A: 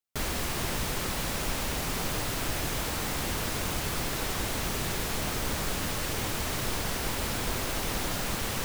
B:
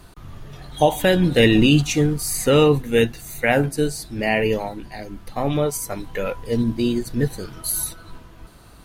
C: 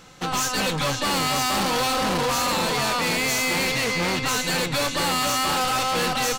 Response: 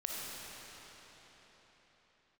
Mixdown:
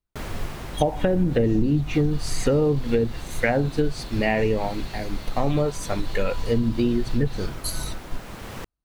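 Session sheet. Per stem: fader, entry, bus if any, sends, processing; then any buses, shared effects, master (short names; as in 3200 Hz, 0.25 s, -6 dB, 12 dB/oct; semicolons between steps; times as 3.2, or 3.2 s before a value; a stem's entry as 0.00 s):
+1.5 dB, 0.00 s, no send, high shelf 3200 Hz -11 dB; auto duck -8 dB, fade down 1.05 s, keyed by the second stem
+2.0 dB, 0.00 s, no send, gate -35 dBFS, range -46 dB; treble ducked by the level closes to 720 Hz, closed at -12 dBFS; low shelf 68 Hz +10.5 dB
-14.5 dB, 1.10 s, no send, band-pass 3800 Hz, Q 2.5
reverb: off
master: compressor 6:1, threshold -17 dBFS, peak gain reduction 11 dB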